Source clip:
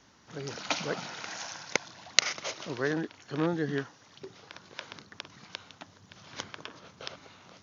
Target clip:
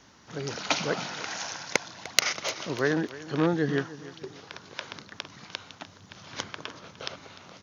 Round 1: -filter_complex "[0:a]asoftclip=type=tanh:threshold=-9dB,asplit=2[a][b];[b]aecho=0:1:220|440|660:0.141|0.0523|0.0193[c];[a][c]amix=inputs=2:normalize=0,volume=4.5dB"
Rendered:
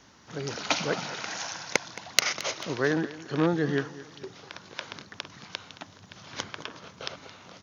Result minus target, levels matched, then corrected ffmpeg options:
echo 80 ms early
-filter_complex "[0:a]asoftclip=type=tanh:threshold=-9dB,asplit=2[a][b];[b]aecho=0:1:300|600|900:0.141|0.0523|0.0193[c];[a][c]amix=inputs=2:normalize=0,volume=4.5dB"

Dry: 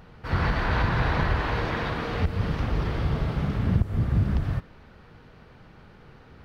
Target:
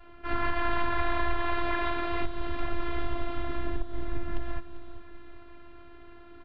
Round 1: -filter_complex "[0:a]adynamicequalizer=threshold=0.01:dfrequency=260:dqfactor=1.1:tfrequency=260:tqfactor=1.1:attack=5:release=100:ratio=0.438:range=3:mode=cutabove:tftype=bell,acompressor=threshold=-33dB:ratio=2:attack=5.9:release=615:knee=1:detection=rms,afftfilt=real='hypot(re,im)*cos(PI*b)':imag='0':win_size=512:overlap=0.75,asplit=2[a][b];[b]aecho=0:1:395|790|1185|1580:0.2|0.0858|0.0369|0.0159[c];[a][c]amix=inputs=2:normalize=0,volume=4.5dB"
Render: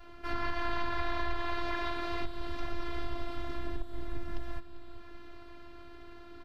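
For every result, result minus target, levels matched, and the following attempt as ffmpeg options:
compressor: peak gain reduction +5 dB; 4000 Hz band +3.5 dB
-filter_complex "[0:a]adynamicequalizer=threshold=0.01:dfrequency=260:dqfactor=1.1:tfrequency=260:tqfactor=1.1:attack=5:release=100:ratio=0.438:range=3:mode=cutabove:tftype=bell,acompressor=threshold=-22.5dB:ratio=2:attack=5.9:release=615:knee=1:detection=rms,afftfilt=real='hypot(re,im)*cos(PI*b)':imag='0':win_size=512:overlap=0.75,asplit=2[a][b];[b]aecho=0:1:395|790|1185|1580:0.2|0.0858|0.0369|0.0159[c];[a][c]amix=inputs=2:normalize=0,volume=4.5dB"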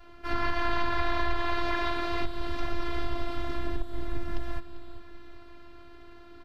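4000 Hz band +3.5 dB
-filter_complex "[0:a]adynamicequalizer=threshold=0.01:dfrequency=260:dqfactor=1.1:tfrequency=260:tqfactor=1.1:attack=5:release=100:ratio=0.438:range=3:mode=cutabove:tftype=bell,lowpass=f=3.4k:w=0.5412,lowpass=f=3.4k:w=1.3066,acompressor=threshold=-22.5dB:ratio=2:attack=5.9:release=615:knee=1:detection=rms,afftfilt=real='hypot(re,im)*cos(PI*b)':imag='0':win_size=512:overlap=0.75,asplit=2[a][b];[b]aecho=0:1:395|790|1185|1580:0.2|0.0858|0.0369|0.0159[c];[a][c]amix=inputs=2:normalize=0,volume=4.5dB"

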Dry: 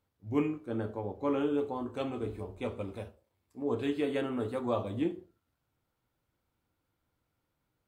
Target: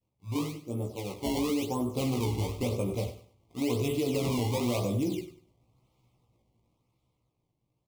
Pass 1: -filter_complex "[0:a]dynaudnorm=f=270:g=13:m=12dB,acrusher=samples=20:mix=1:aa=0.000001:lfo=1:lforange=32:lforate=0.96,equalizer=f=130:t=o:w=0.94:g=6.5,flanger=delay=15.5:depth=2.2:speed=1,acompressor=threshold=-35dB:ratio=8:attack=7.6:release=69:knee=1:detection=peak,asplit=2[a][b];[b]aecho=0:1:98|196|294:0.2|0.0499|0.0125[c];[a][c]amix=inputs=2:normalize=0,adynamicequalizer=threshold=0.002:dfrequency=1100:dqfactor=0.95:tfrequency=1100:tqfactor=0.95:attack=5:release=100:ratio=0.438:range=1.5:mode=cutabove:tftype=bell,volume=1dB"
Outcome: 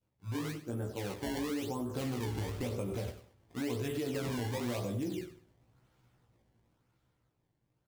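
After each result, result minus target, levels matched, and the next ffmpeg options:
compressor: peak gain reduction +6.5 dB; 2000 Hz band +4.5 dB
-filter_complex "[0:a]dynaudnorm=f=270:g=13:m=12dB,acrusher=samples=20:mix=1:aa=0.000001:lfo=1:lforange=32:lforate=0.96,equalizer=f=130:t=o:w=0.94:g=6.5,flanger=delay=15.5:depth=2.2:speed=1,acompressor=threshold=-27.5dB:ratio=8:attack=7.6:release=69:knee=1:detection=peak,asplit=2[a][b];[b]aecho=0:1:98|196|294:0.2|0.0499|0.0125[c];[a][c]amix=inputs=2:normalize=0,adynamicequalizer=threshold=0.002:dfrequency=1100:dqfactor=0.95:tfrequency=1100:tqfactor=0.95:attack=5:release=100:ratio=0.438:range=1.5:mode=cutabove:tftype=bell,volume=1dB"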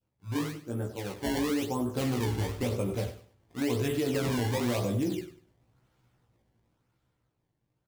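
2000 Hz band +4.0 dB
-filter_complex "[0:a]dynaudnorm=f=270:g=13:m=12dB,acrusher=samples=20:mix=1:aa=0.000001:lfo=1:lforange=32:lforate=0.96,asuperstop=centerf=1600:order=8:qfactor=1.9,equalizer=f=130:t=o:w=0.94:g=6.5,flanger=delay=15.5:depth=2.2:speed=1,acompressor=threshold=-27.5dB:ratio=8:attack=7.6:release=69:knee=1:detection=peak,asplit=2[a][b];[b]aecho=0:1:98|196|294:0.2|0.0499|0.0125[c];[a][c]amix=inputs=2:normalize=0,adynamicequalizer=threshold=0.002:dfrequency=1100:dqfactor=0.95:tfrequency=1100:tqfactor=0.95:attack=5:release=100:ratio=0.438:range=1.5:mode=cutabove:tftype=bell,volume=1dB"

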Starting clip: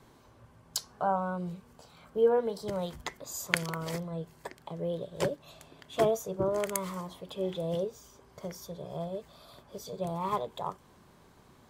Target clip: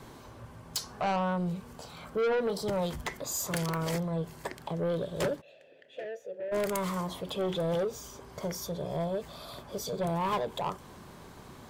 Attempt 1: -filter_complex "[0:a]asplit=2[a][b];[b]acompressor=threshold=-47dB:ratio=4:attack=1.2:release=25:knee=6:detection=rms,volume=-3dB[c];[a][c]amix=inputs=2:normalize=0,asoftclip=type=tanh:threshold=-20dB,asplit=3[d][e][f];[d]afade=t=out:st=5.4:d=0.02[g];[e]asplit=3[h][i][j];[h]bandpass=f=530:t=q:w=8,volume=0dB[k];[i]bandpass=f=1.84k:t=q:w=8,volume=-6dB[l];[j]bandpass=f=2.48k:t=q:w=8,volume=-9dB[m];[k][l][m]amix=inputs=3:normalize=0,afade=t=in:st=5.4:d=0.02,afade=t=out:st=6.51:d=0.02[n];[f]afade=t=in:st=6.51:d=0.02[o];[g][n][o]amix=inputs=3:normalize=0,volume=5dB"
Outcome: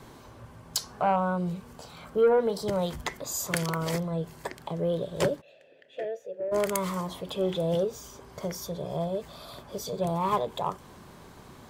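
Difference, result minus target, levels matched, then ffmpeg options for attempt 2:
soft clip: distortion -8 dB
-filter_complex "[0:a]asplit=2[a][b];[b]acompressor=threshold=-47dB:ratio=4:attack=1.2:release=25:knee=6:detection=rms,volume=-3dB[c];[a][c]amix=inputs=2:normalize=0,asoftclip=type=tanh:threshold=-30dB,asplit=3[d][e][f];[d]afade=t=out:st=5.4:d=0.02[g];[e]asplit=3[h][i][j];[h]bandpass=f=530:t=q:w=8,volume=0dB[k];[i]bandpass=f=1.84k:t=q:w=8,volume=-6dB[l];[j]bandpass=f=2.48k:t=q:w=8,volume=-9dB[m];[k][l][m]amix=inputs=3:normalize=0,afade=t=in:st=5.4:d=0.02,afade=t=out:st=6.51:d=0.02[n];[f]afade=t=in:st=6.51:d=0.02[o];[g][n][o]amix=inputs=3:normalize=0,volume=5dB"

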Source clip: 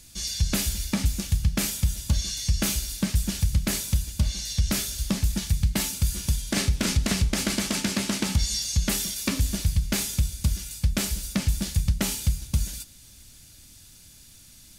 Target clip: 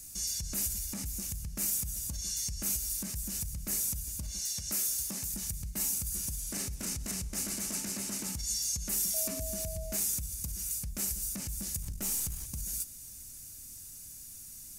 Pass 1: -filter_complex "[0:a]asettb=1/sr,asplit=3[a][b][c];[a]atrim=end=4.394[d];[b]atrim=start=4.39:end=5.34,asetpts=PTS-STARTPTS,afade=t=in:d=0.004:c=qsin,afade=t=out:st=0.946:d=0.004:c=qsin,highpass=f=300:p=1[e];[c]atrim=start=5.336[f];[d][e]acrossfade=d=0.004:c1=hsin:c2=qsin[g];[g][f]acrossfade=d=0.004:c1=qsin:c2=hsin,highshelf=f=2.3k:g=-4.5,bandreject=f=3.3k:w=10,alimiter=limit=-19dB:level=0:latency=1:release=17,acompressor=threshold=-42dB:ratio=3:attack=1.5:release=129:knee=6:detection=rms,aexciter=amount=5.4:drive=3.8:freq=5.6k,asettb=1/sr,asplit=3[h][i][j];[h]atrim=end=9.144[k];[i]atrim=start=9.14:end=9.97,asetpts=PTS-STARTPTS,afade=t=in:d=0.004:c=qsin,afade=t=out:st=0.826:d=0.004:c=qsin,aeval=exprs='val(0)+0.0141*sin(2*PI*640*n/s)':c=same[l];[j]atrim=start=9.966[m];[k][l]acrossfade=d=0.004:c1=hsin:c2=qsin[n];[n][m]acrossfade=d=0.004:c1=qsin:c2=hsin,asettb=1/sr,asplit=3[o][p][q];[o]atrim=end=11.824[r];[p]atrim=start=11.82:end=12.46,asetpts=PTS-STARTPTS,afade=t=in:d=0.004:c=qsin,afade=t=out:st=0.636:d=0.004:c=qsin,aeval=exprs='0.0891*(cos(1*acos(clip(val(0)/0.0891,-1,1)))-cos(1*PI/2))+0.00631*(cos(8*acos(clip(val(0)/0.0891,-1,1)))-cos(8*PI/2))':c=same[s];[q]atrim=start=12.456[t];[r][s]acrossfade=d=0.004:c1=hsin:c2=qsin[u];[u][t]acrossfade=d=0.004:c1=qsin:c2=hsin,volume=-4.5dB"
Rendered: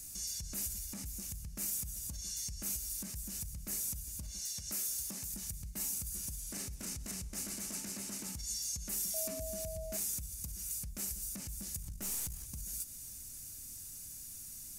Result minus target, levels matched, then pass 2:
compressor: peak gain reduction +5.5 dB
-filter_complex "[0:a]asettb=1/sr,asplit=3[a][b][c];[a]atrim=end=4.394[d];[b]atrim=start=4.39:end=5.34,asetpts=PTS-STARTPTS,afade=t=in:d=0.004:c=qsin,afade=t=out:st=0.946:d=0.004:c=qsin,highpass=f=300:p=1[e];[c]atrim=start=5.336[f];[d][e]acrossfade=d=0.004:c1=hsin:c2=qsin[g];[g][f]acrossfade=d=0.004:c1=qsin:c2=hsin,highshelf=f=2.3k:g=-4.5,bandreject=f=3.3k:w=10,alimiter=limit=-19dB:level=0:latency=1:release=17,acompressor=threshold=-33.5dB:ratio=3:attack=1.5:release=129:knee=6:detection=rms,aexciter=amount=5.4:drive=3.8:freq=5.6k,asettb=1/sr,asplit=3[h][i][j];[h]atrim=end=9.144[k];[i]atrim=start=9.14:end=9.97,asetpts=PTS-STARTPTS,afade=t=in:d=0.004:c=qsin,afade=t=out:st=0.826:d=0.004:c=qsin,aeval=exprs='val(0)+0.0141*sin(2*PI*640*n/s)':c=same[l];[j]atrim=start=9.966[m];[k][l]acrossfade=d=0.004:c1=hsin:c2=qsin[n];[n][m]acrossfade=d=0.004:c1=qsin:c2=hsin,asettb=1/sr,asplit=3[o][p][q];[o]atrim=end=11.824[r];[p]atrim=start=11.82:end=12.46,asetpts=PTS-STARTPTS,afade=t=in:d=0.004:c=qsin,afade=t=out:st=0.636:d=0.004:c=qsin,aeval=exprs='0.0891*(cos(1*acos(clip(val(0)/0.0891,-1,1)))-cos(1*PI/2))+0.00631*(cos(8*acos(clip(val(0)/0.0891,-1,1)))-cos(8*PI/2))':c=same[s];[q]atrim=start=12.456[t];[r][s]acrossfade=d=0.004:c1=hsin:c2=qsin[u];[u][t]acrossfade=d=0.004:c1=qsin:c2=hsin,volume=-4.5dB"

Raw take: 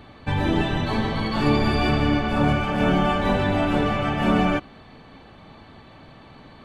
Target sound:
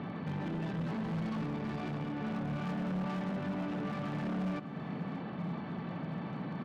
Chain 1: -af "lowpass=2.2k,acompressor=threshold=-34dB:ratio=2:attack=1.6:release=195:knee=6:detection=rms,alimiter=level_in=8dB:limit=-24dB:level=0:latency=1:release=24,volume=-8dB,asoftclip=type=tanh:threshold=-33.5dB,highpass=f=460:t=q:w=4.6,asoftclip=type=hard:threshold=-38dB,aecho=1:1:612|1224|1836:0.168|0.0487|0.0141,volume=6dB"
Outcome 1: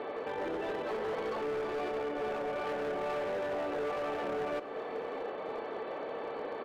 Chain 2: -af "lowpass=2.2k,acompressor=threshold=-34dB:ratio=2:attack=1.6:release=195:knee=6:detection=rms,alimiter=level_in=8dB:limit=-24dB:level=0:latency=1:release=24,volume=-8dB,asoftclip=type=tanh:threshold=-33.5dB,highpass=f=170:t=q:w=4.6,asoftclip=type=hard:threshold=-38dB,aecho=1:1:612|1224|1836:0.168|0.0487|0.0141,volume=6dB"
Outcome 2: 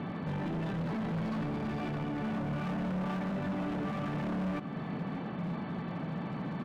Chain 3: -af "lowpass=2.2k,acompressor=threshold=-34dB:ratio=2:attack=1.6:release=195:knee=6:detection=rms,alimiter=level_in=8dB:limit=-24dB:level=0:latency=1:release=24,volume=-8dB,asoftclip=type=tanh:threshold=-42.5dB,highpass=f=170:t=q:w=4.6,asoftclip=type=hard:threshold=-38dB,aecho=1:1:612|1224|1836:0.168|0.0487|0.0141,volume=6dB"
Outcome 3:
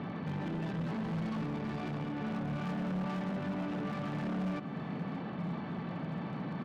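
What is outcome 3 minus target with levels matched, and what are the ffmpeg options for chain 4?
compressor: peak gain reduction -3.5 dB
-af "lowpass=2.2k,acompressor=threshold=-41dB:ratio=2:attack=1.6:release=195:knee=6:detection=rms,alimiter=level_in=8dB:limit=-24dB:level=0:latency=1:release=24,volume=-8dB,asoftclip=type=tanh:threshold=-42.5dB,highpass=f=170:t=q:w=4.6,asoftclip=type=hard:threshold=-38dB,aecho=1:1:612|1224|1836:0.168|0.0487|0.0141,volume=6dB"

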